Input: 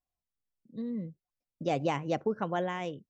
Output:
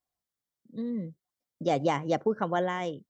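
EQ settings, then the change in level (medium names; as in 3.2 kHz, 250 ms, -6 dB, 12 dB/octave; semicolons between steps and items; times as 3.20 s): high-pass 140 Hz 6 dB/octave; band-stop 2.6 kHz, Q 5.2; +4.0 dB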